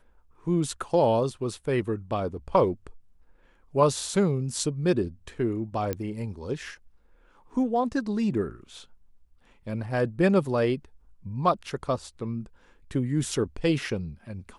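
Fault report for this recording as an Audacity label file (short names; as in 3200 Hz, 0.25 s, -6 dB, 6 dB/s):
5.930000	5.930000	pop -15 dBFS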